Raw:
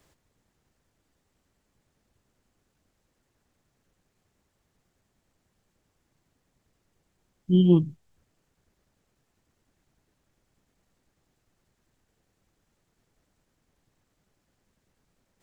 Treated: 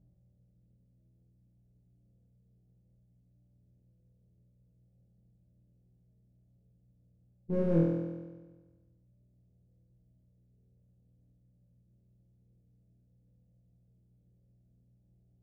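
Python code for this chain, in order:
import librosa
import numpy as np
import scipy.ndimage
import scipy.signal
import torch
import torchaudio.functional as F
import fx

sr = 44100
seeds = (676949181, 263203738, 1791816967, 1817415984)

p1 = fx.lower_of_two(x, sr, delay_ms=1.2)
p2 = scipy.signal.sosfilt(scipy.signal.butter(6, 530.0, 'lowpass', fs=sr, output='sos'), p1)
p3 = fx.low_shelf(p2, sr, hz=69.0, db=-8.5)
p4 = np.clip(10.0 ** (29.0 / 20.0) * p3, -1.0, 1.0) / 10.0 ** (29.0 / 20.0)
p5 = p3 + F.gain(torch.from_numpy(p4), -6.0).numpy()
p6 = fx.dmg_buzz(p5, sr, base_hz=60.0, harmonics=3, level_db=-60.0, tilt_db=-1, odd_only=False)
p7 = p6 + fx.room_flutter(p6, sr, wall_m=4.1, rt60_s=1.3, dry=0)
y = F.gain(torch.from_numpy(p7), -6.5).numpy()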